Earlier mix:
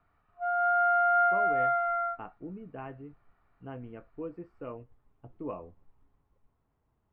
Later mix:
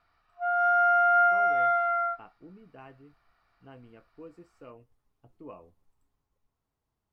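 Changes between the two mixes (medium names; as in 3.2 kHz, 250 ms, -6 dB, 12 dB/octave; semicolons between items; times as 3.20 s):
speech -9.0 dB; master: remove distance through air 500 m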